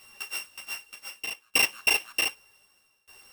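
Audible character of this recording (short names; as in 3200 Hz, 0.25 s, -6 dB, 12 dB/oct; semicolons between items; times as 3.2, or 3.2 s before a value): a buzz of ramps at a fixed pitch in blocks of 16 samples; tremolo saw down 0.65 Hz, depth 95%; a shimmering, thickened sound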